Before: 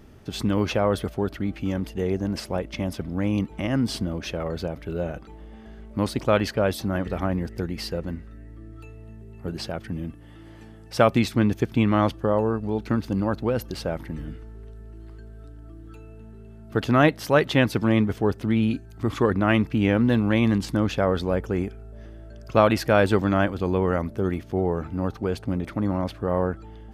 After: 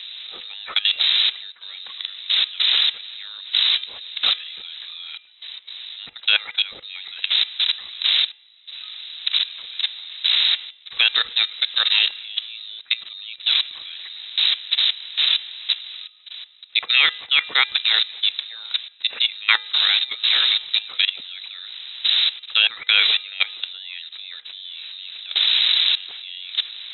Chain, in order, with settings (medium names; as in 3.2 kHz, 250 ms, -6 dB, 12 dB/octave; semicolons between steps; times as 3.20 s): wind noise 370 Hz -20 dBFS; transient shaper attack +5 dB, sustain -2 dB; level held to a coarse grid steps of 18 dB; peaking EQ 2 kHz +12.5 dB 2.1 oct; de-hum 379 Hz, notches 9; frequency inversion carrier 3.9 kHz; tilt EQ +2 dB/octave; trim -5 dB